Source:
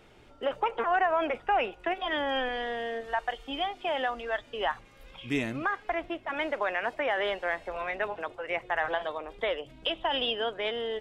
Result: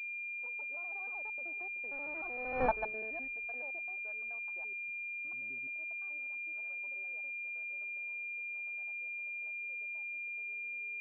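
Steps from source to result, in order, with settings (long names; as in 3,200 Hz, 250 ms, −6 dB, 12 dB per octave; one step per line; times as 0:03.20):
slices reordered back to front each 81 ms, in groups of 5
source passing by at 0:02.66, 19 m/s, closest 1.1 metres
switching amplifier with a slow clock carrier 2,400 Hz
level +4 dB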